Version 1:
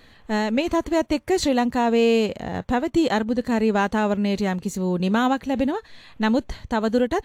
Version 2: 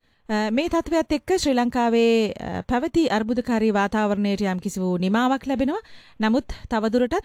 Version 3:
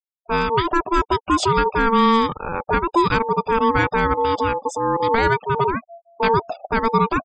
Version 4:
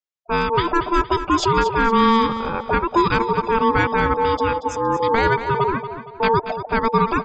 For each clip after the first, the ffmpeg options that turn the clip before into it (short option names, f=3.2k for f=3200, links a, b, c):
-af "agate=range=-33dB:threshold=-41dB:ratio=3:detection=peak"
-af "afftfilt=real='re*gte(hypot(re,im),0.0251)':imag='im*gte(hypot(re,im),0.0251)':win_size=1024:overlap=0.75,aeval=exprs='val(0)*sin(2*PI*680*n/s)':c=same,volume=5.5dB"
-filter_complex "[0:a]asplit=2[a][b];[b]aecho=0:1:232|464|696|928:0.282|0.11|0.0429|0.0167[c];[a][c]amix=inputs=2:normalize=0,aresample=16000,aresample=44100"